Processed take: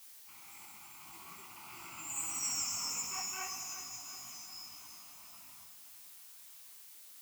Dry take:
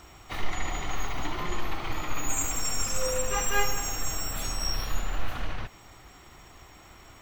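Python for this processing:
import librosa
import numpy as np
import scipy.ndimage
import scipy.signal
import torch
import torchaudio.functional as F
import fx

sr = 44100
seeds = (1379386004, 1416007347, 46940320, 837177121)

p1 = fx.doppler_pass(x, sr, speed_mps=32, closest_m=15.0, pass_at_s=2.59)
p2 = scipy.signal.sosfilt(scipy.signal.butter(2, 190.0, 'highpass', fs=sr, output='sos'), p1)
p3 = fx.high_shelf(p2, sr, hz=3700.0, db=8.0)
p4 = fx.fixed_phaser(p3, sr, hz=2500.0, stages=8)
p5 = fx.dmg_noise_colour(p4, sr, seeds[0], colour='blue', level_db=-46.0)
p6 = p5 + fx.echo_feedback(p5, sr, ms=361, feedback_pct=55, wet_db=-11.0, dry=0)
p7 = fx.detune_double(p6, sr, cents=57)
y = p7 * librosa.db_to_amplitude(-4.5)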